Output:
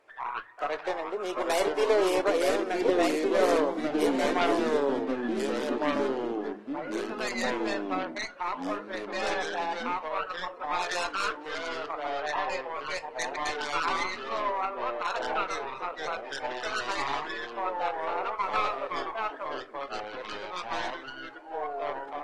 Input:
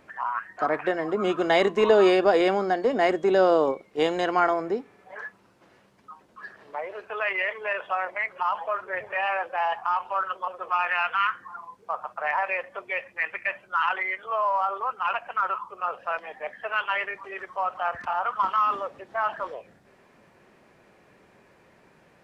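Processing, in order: tracing distortion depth 0.32 ms; resonant low shelf 290 Hz -13.5 dB, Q 1.5; ever faster or slower copies 631 ms, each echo -3 st, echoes 3; 2.28–3.42 s: dynamic bell 850 Hz, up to -8 dB, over -39 dBFS, Q 4.9; 12.19–12.64 s: low-pass 5.3 kHz 12 dB/octave; thinning echo 257 ms, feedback 18%, high-pass 890 Hz, level -23 dB; reverberation RT60 0.30 s, pre-delay 7 ms, DRR 12.5 dB; trim -8 dB; AAC 32 kbps 48 kHz

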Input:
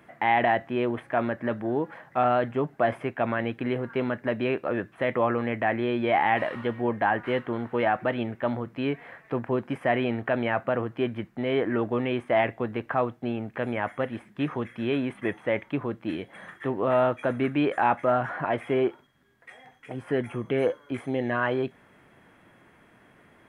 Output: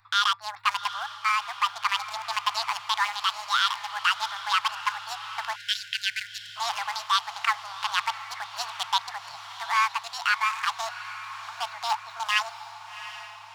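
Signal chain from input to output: local Wiener filter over 25 samples; hum 60 Hz, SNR 28 dB; speed mistake 45 rpm record played at 78 rpm; inverse Chebyshev band-stop 190–560 Hz, stop band 40 dB; peaking EQ 70 Hz -10.5 dB 2.6 oct; gain riding within 3 dB 0.5 s; treble shelf 3.1 kHz +12 dB; echo that smears into a reverb 749 ms, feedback 59%, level -12.5 dB; spectral selection erased 5.55–6.56 s, 240–1400 Hz

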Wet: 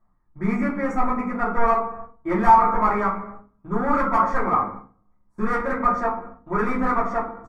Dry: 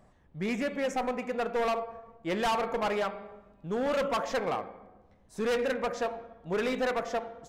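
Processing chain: gate -47 dBFS, range -19 dB; resonant high shelf 2.2 kHz -12.5 dB, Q 3; band-stop 1.5 kHz, Q 15; comb 0.9 ms, depth 52%; simulated room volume 120 m³, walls furnished, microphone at 2.8 m

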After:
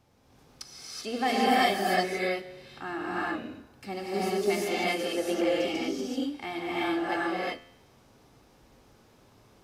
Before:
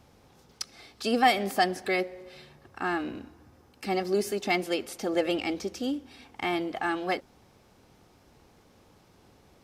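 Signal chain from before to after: feedback comb 87 Hz, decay 0.89 s, harmonics all, mix 50%; gated-style reverb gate 410 ms rising, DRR -7.5 dB; trim -2.5 dB

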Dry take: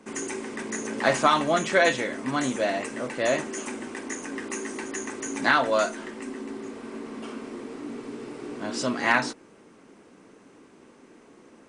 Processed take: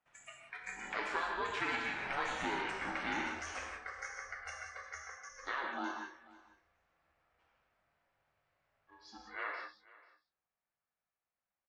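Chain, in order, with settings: Doppler pass-by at 2.40 s, 27 m/s, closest 16 m; high-pass 990 Hz 12 dB/octave; spectral noise reduction 18 dB; low-pass 5.6 kHz 12 dB/octave; treble shelf 3.4 kHz -12 dB; compression 4:1, threshold -44 dBFS, peak gain reduction 15.5 dB; ring modulator 280 Hz; delay 490 ms -21 dB; gated-style reverb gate 210 ms flat, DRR 1 dB; trim +9.5 dB

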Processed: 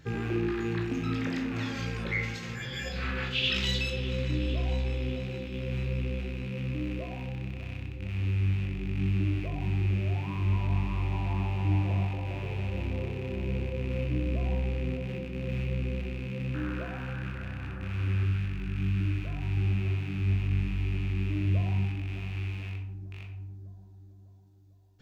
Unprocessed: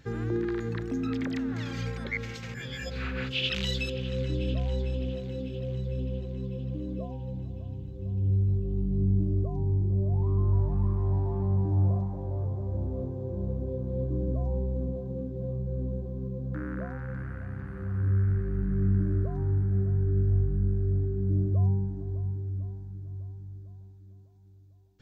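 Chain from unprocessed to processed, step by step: rattle on loud lows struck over -33 dBFS, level -34 dBFS; 18.23–19.57 s: peaking EQ 500 Hz -7 dB 1.8 oct; reverberation RT60 0.60 s, pre-delay 15 ms, DRR 0.5 dB

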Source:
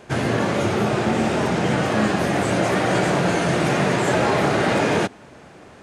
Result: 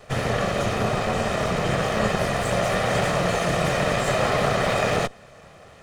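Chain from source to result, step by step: comb filter that takes the minimum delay 1.6 ms; trim -1 dB

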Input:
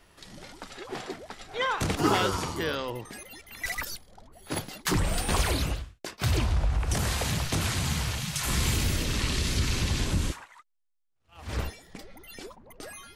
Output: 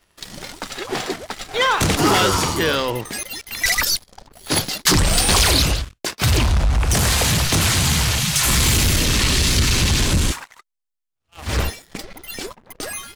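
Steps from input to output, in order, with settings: treble shelf 2.3 kHz +5 dB; waveshaping leveller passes 3; 3.14–5.82 s: peaking EQ 4.9 kHz +5.5 dB 1 oct

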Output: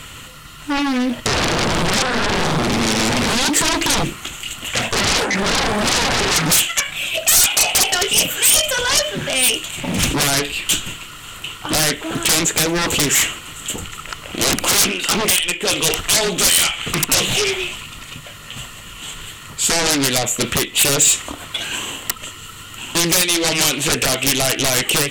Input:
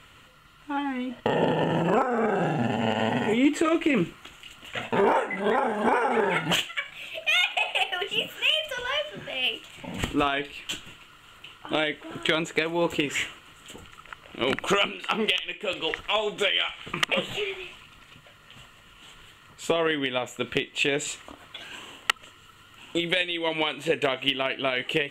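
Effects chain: sine folder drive 17 dB, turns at -9.5 dBFS; tone controls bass +4 dB, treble +12 dB; loudspeaker Doppler distortion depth 0.38 ms; trim -7 dB

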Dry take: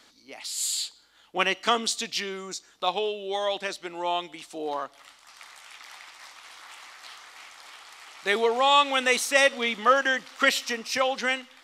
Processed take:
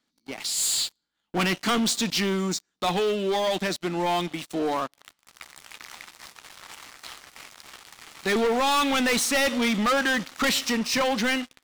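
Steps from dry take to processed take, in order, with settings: FFT filter 110 Hz 0 dB, 170 Hz +10 dB, 490 Hz -4 dB; waveshaping leveller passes 5; trim -8 dB

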